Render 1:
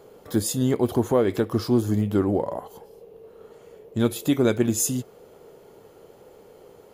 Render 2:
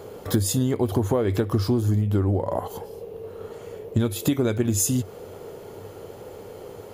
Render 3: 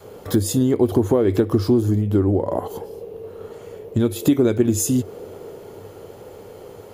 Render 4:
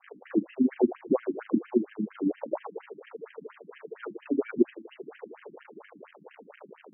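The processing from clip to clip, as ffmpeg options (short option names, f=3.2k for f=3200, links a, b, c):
-af "equalizer=f=96:w=4.3:g=13,acompressor=threshold=-27dB:ratio=16,volume=9dB"
-af "adynamicequalizer=threshold=0.0158:dfrequency=330:dqfactor=1.1:tfrequency=330:tqfactor=1.1:attack=5:release=100:ratio=0.375:range=4:mode=boostabove:tftype=bell"
-af "acrusher=bits=7:dc=4:mix=0:aa=0.000001,tremolo=f=26:d=0.571,afftfilt=real='re*between(b*sr/1024,220*pow(2300/220,0.5+0.5*sin(2*PI*4.3*pts/sr))/1.41,220*pow(2300/220,0.5+0.5*sin(2*PI*4.3*pts/sr))*1.41)':imag='im*between(b*sr/1024,220*pow(2300/220,0.5+0.5*sin(2*PI*4.3*pts/sr))/1.41,220*pow(2300/220,0.5+0.5*sin(2*PI*4.3*pts/sr))*1.41)':win_size=1024:overlap=0.75"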